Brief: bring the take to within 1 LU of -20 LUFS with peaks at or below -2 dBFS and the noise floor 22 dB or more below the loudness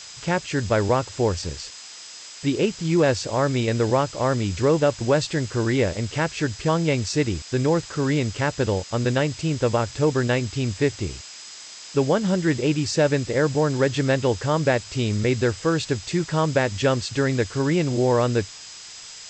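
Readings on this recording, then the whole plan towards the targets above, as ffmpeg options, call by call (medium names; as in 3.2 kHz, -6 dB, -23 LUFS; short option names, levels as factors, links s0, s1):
steady tone 5 kHz; tone level -44 dBFS; noise floor -41 dBFS; noise floor target -45 dBFS; loudness -23.0 LUFS; peak level -7.5 dBFS; loudness target -20.0 LUFS
-> -af "bandreject=f=5000:w=30"
-af "afftdn=nr=6:nf=-41"
-af "volume=1.41"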